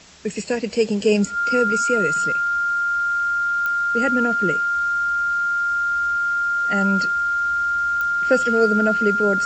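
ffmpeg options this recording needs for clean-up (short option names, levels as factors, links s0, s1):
-af "adeclick=t=4,bandreject=f=1400:w=30,afwtdn=0.0063"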